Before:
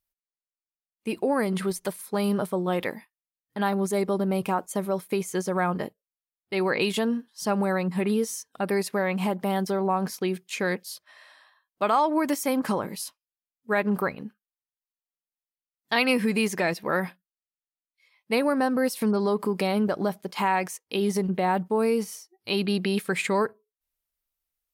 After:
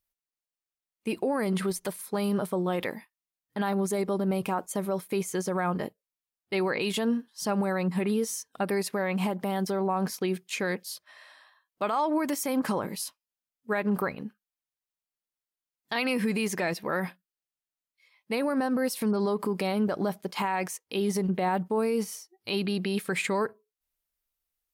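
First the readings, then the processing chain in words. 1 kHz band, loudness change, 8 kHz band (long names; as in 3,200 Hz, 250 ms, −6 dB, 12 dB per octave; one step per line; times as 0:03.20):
−4.0 dB, −3.0 dB, −0.5 dB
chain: brickwall limiter −19 dBFS, peak gain reduction 7.5 dB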